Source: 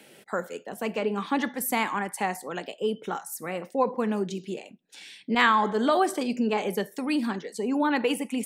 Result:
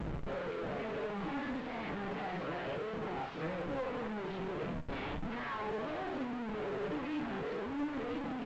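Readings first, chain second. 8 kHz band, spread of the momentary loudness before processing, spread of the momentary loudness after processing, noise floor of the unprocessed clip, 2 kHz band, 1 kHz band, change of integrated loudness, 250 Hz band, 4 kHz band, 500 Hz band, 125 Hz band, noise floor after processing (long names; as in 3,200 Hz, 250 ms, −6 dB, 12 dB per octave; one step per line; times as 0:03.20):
below −25 dB, 12 LU, 2 LU, −55 dBFS, −12.5 dB, −13.0 dB, −11.5 dB, −10.5 dB, −14.0 dB, −9.5 dB, −2.5 dB, −41 dBFS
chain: every bin's largest magnitude spread in time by 120 ms
dynamic equaliser 1,300 Hz, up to −6 dB, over −38 dBFS, Q 3.5
reversed playback
downward compressor 6 to 1, threshold −28 dBFS, peak gain reduction 15 dB
reversed playback
rotating-speaker cabinet horn 0.65 Hz
comparator with hysteresis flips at −45.5 dBFS
flanger 1.7 Hz, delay 5.8 ms, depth 1.9 ms, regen +49%
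Gaussian smoothing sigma 2.9 samples
floating-point word with a short mantissa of 4 bits
on a send: repeating echo 66 ms, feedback 39%, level −14.5 dB
on the sum: A-law companding 128 kbit/s 16,000 Hz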